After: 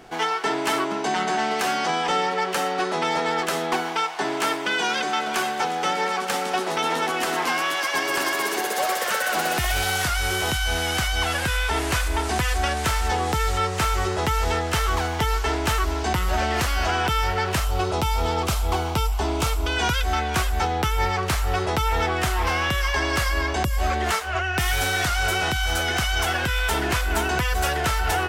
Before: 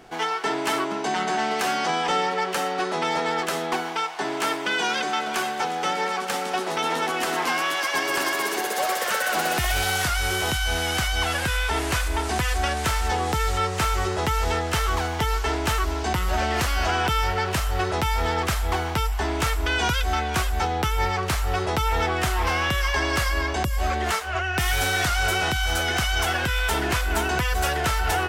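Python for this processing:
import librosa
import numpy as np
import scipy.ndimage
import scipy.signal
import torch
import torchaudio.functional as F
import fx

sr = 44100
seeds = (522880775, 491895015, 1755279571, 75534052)

p1 = fx.peak_eq(x, sr, hz=1800.0, db=-11.0, octaves=0.49, at=(17.65, 19.77))
p2 = fx.rider(p1, sr, range_db=10, speed_s=0.5)
p3 = p1 + F.gain(torch.from_numpy(p2), -1.5).numpy()
y = F.gain(torch.from_numpy(p3), -4.5).numpy()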